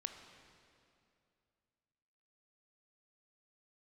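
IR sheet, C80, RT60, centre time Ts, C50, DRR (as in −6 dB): 8.0 dB, 2.5 s, 39 ms, 7.0 dB, 6.0 dB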